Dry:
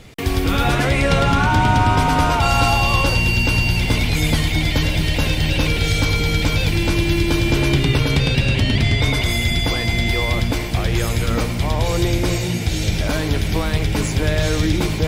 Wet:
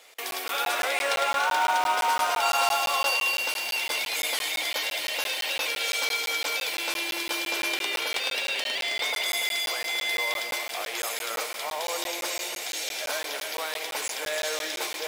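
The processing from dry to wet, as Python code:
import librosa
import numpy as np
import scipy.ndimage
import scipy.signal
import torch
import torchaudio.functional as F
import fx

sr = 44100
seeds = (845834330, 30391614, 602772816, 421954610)

p1 = scipy.signal.sosfilt(scipy.signal.butter(4, 540.0, 'highpass', fs=sr, output='sos'), x)
p2 = fx.high_shelf(p1, sr, hz=8300.0, db=8.5)
p3 = fx.mod_noise(p2, sr, seeds[0], snr_db=23)
p4 = p3 + fx.echo_multitap(p3, sr, ms=(147, 288), db=(-15.0, -8.5), dry=0)
p5 = fx.buffer_crackle(p4, sr, first_s=0.31, period_s=0.17, block=512, kind='zero')
y = p5 * librosa.db_to_amplitude(-6.0)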